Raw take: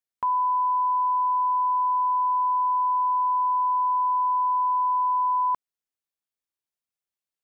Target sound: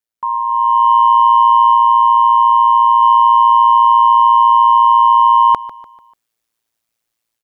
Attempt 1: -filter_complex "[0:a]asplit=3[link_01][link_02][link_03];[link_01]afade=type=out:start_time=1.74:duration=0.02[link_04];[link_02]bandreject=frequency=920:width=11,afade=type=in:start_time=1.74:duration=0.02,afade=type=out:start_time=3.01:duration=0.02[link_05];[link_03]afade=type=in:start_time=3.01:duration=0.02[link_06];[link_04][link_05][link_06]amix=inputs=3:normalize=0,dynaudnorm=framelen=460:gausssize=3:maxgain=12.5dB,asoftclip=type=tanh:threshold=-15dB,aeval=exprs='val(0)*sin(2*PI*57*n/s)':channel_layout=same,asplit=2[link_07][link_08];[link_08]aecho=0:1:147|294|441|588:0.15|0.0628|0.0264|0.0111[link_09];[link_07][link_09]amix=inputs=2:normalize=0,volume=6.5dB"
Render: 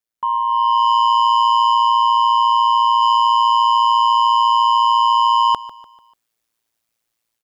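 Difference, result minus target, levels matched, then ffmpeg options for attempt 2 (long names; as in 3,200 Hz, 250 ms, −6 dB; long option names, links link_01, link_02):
soft clipping: distortion +15 dB
-filter_complex "[0:a]asplit=3[link_01][link_02][link_03];[link_01]afade=type=out:start_time=1.74:duration=0.02[link_04];[link_02]bandreject=frequency=920:width=11,afade=type=in:start_time=1.74:duration=0.02,afade=type=out:start_time=3.01:duration=0.02[link_05];[link_03]afade=type=in:start_time=3.01:duration=0.02[link_06];[link_04][link_05][link_06]amix=inputs=3:normalize=0,dynaudnorm=framelen=460:gausssize=3:maxgain=12.5dB,asoftclip=type=tanh:threshold=-4.5dB,aeval=exprs='val(0)*sin(2*PI*57*n/s)':channel_layout=same,asplit=2[link_07][link_08];[link_08]aecho=0:1:147|294|441|588:0.15|0.0628|0.0264|0.0111[link_09];[link_07][link_09]amix=inputs=2:normalize=0,volume=6.5dB"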